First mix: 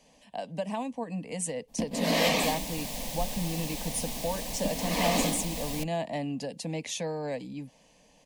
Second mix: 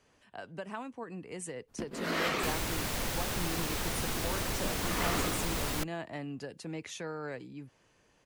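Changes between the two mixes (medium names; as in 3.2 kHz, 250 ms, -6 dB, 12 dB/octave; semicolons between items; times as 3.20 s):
speech -10.0 dB; first sound -10.5 dB; master: remove static phaser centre 370 Hz, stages 6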